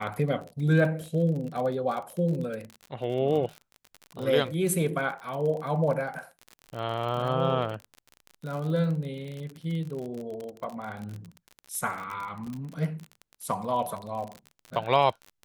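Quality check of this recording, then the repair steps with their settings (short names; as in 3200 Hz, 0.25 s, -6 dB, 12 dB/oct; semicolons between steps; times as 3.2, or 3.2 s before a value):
crackle 39/s -33 dBFS
12.47 gap 2.4 ms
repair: de-click; interpolate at 12.47, 2.4 ms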